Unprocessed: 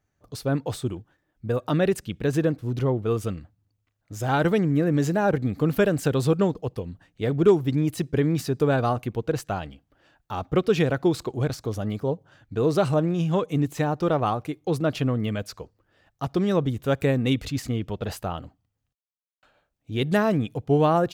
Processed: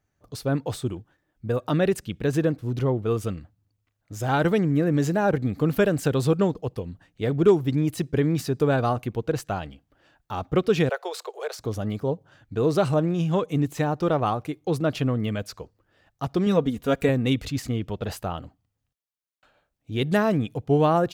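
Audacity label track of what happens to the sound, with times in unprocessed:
10.890000	11.590000	Butterworth high-pass 420 Hz 72 dB per octave
16.460000	17.090000	comb filter 4.2 ms

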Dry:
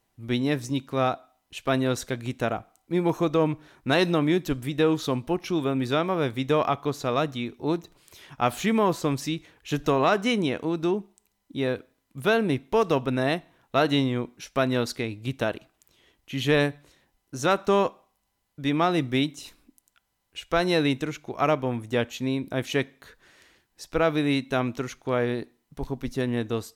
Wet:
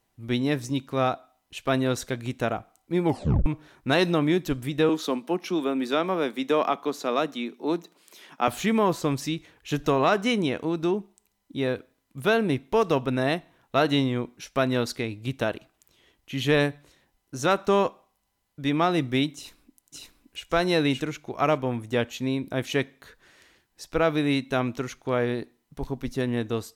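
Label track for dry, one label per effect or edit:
3.060000	3.060000	tape stop 0.40 s
4.890000	8.480000	Butterworth high-pass 180 Hz 48 dB per octave
19.350000	20.440000	delay throw 570 ms, feedback 20%, level −1 dB

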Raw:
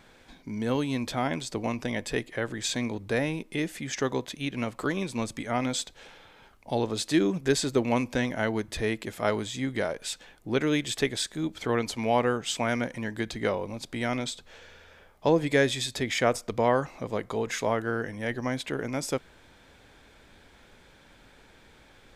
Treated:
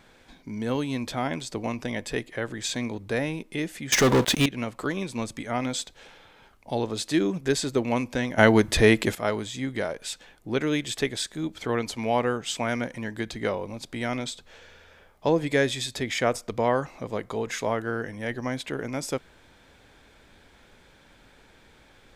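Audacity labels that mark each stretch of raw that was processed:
3.920000	4.460000	leveller curve on the samples passes 5
8.380000	9.150000	clip gain +11 dB

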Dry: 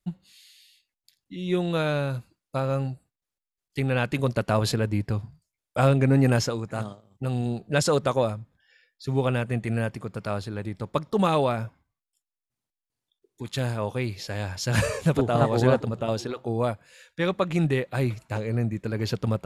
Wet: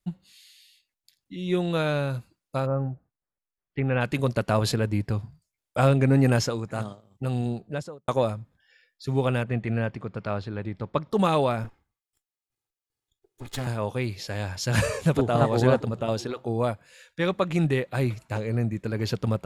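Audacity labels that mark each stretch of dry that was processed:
2.650000	4.000000	low-pass filter 1,300 Hz → 2,700 Hz 24 dB per octave
7.390000	8.080000	fade out and dull
9.430000	11.110000	low-pass filter 3,700 Hz
11.640000	13.670000	lower of the sound and its delayed copy delay 2.4 ms

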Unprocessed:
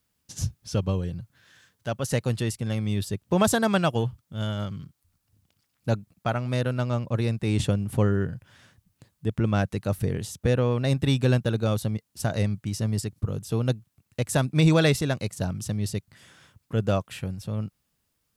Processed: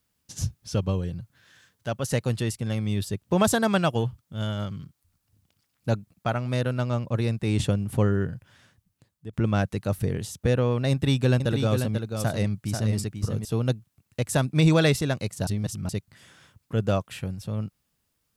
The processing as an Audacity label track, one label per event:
8.280000	9.330000	fade out, to −12.5 dB
10.910000	13.450000	single-tap delay 489 ms −6.5 dB
15.470000	15.890000	reverse

